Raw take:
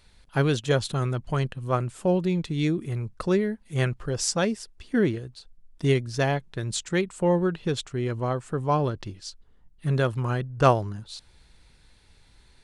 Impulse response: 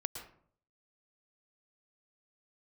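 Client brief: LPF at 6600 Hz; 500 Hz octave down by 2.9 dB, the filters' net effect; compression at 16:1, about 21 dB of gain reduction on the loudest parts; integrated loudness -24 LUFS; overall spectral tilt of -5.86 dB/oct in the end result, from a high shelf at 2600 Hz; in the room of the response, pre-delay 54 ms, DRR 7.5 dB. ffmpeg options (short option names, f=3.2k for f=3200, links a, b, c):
-filter_complex "[0:a]lowpass=6.6k,equalizer=f=500:t=o:g=-3.5,highshelf=f=2.6k:g=-5,acompressor=threshold=-35dB:ratio=16,asplit=2[a][b];[1:a]atrim=start_sample=2205,adelay=54[c];[b][c]afir=irnorm=-1:irlink=0,volume=-7.5dB[d];[a][d]amix=inputs=2:normalize=0,volume=16.5dB"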